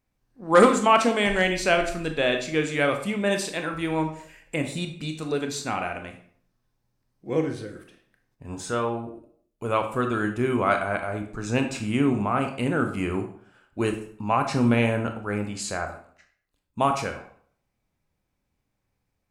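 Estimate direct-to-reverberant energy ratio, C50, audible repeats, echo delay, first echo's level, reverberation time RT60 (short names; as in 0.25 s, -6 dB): 5.0 dB, 8.5 dB, none, none, none, 0.55 s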